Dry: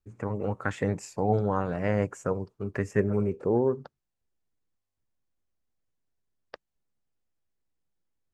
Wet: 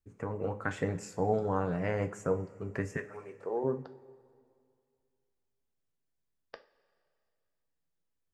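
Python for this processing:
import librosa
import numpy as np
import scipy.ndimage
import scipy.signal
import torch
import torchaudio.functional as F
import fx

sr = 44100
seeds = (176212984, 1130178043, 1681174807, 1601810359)

y = fx.highpass(x, sr, hz=fx.line((2.96, 1100.0), (3.63, 510.0)), slope=12, at=(2.96, 3.63), fade=0.02)
y = fx.rev_double_slope(y, sr, seeds[0], early_s=0.29, late_s=2.3, knee_db=-18, drr_db=7.0)
y = y * 10.0 ** (-4.0 / 20.0)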